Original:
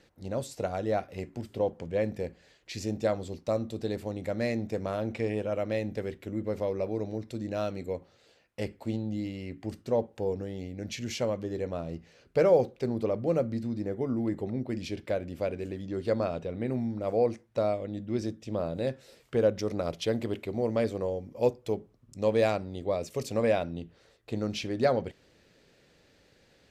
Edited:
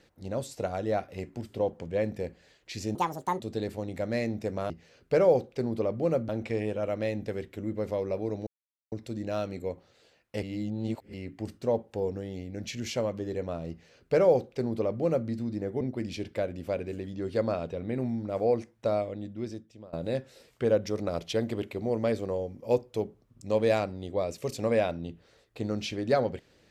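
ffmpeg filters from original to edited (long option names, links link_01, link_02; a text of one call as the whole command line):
ffmpeg -i in.wav -filter_complex "[0:a]asplit=10[link_01][link_02][link_03][link_04][link_05][link_06][link_07][link_08][link_09][link_10];[link_01]atrim=end=2.954[link_11];[link_02]atrim=start=2.95:end=3.68,asetpts=PTS-STARTPTS,asetrate=71883,aresample=44100,atrim=end_sample=19750,asetpts=PTS-STARTPTS[link_12];[link_03]atrim=start=3.676:end=4.982[link_13];[link_04]atrim=start=11.938:end=13.532[link_14];[link_05]atrim=start=4.978:end=7.16,asetpts=PTS-STARTPTS,afade=type=out:start_time=2.178:duration=0.004:curve=hsin,apad=pad_dur=0.45[link_15];[link_06]atrim=start=7.16:end=8.672,asetpts=PTS-STARTPTS,afade=type=in:duration=0.004:curve=hsin[link_16];[link_07]atrim=start=8.668:end=9.382,asetpts=PTS-STARTPTS,areverse[link_17];[link_08]atrim=start=9.378:end=14.052[link_18];[link_09]atrim=start=14.528:end=18.65,asetpts=PTS-STARTPTS,afade=type=out:start_time=3.232:duration=0.89:silence=0.0668344[link_19];[link_10]atrim=start=18.65,asetpts=PTS-STARTPTS,afade=type=in:duration=0.004:curve=hsin:silence=0.0668344[link_20];[link_11][link_12]acrossfade=duration=0.004:curve1=hsin:curve2=hsin[link_21];[link_21][link_13]acrossfade=duration=0.004:curve1=hsin:curve2=hsin[link_22];[link_22][link_14]acrossfade=duration=0.004:curve1=hsin:curve2=hsin[link_23];[link_15][link_16]concat=n=2:v=0:a=1[link_24];[link_23][link_24]acrossfade=duration=0.004:curve1=hsin:curve2=hsin[link_25];[link_25][link_17]acrossfade=duration=0.004:curve1=hsin:curve2=hsin[link_26];[link_26][link_18]acrossfade=duration=0.004:curve1=hsin:curve2=hsin[link_27];[link_19][link_20]concat=n=2:v=0:a=1[link_28];[link_27][link_28]acrossfade=duration=0.004:curve1=hsin:curve2=hsin" out.wav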